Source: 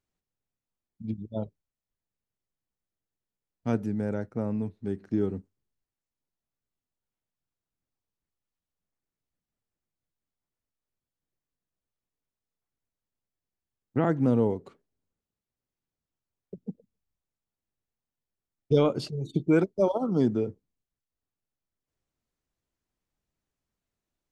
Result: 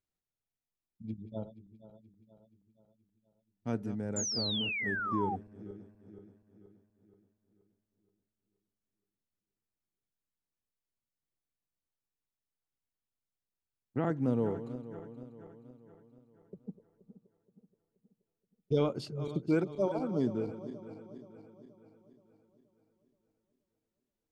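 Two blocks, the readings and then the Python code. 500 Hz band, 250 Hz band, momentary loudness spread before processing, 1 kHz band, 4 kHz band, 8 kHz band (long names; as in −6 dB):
−6.5 dB, −6.5 dB, 16 LU, −1.5 dB, +8.5 dB, can't be measured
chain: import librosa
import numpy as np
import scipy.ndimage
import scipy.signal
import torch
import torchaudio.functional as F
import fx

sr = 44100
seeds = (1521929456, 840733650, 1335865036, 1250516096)

y = fx.reverse_delay_fb(x, sr, ms=238, feedback_pct=69, wet_db=-12.5)
y = fx.spec_paint(y, sr, seeds[0], shape='fall', start_s=4.16, length_s=1.2, low_hz=740.0, high_hz=7300.0, level_db=-28.0)
y = y * librosa.db_to_amplitude(-7.0)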